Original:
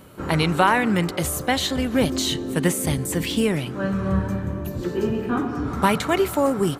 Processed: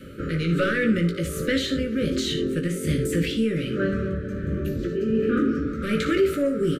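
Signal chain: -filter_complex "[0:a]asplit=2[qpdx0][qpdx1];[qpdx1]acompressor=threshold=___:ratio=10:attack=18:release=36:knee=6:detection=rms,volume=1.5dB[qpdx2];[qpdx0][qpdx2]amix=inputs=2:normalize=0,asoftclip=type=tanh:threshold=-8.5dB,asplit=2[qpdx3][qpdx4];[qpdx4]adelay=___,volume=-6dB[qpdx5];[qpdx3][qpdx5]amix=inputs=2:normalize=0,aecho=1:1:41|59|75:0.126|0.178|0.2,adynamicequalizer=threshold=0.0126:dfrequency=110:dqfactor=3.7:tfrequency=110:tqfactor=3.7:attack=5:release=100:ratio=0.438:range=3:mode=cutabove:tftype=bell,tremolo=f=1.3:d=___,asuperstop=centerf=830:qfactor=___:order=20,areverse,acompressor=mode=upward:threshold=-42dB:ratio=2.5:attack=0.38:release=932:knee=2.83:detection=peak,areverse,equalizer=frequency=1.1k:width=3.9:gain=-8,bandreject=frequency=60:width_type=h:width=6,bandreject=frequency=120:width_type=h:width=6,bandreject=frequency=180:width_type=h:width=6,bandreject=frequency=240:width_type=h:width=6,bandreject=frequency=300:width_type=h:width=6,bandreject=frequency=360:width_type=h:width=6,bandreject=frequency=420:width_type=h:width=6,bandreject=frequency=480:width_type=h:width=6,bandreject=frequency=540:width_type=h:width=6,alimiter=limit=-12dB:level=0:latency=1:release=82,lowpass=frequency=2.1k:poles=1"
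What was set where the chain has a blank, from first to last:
-27dB, 18, 0.56, 1.4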